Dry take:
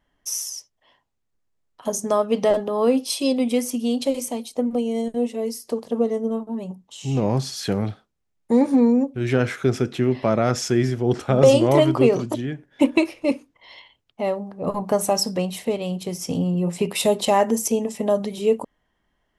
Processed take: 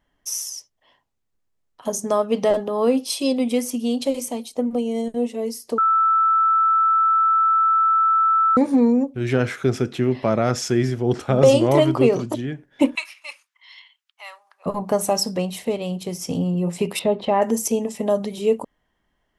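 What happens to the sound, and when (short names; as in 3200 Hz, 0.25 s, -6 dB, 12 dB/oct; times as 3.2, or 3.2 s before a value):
5.78–8.57 bleep 1320 Hz -14 dBFS
12.95–14.66 HPF 1200 Hz 24 dB/oct
16.99–17.42 air absorption 380 m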